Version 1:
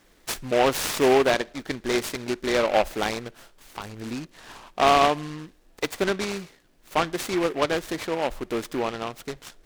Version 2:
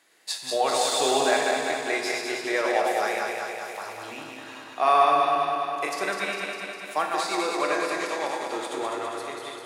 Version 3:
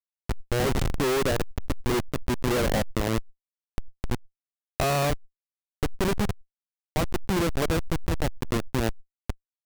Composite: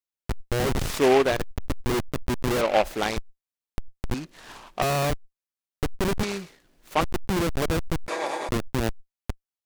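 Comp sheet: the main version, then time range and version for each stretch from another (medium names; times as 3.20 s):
3
0.89–1.33 s: from 1, crossfade 0.24 s
2.61–3.17 s: from 1
4.14–4.82 s: from 1
6.23–7.01 s: from 1
8.08–8.49 s: from 2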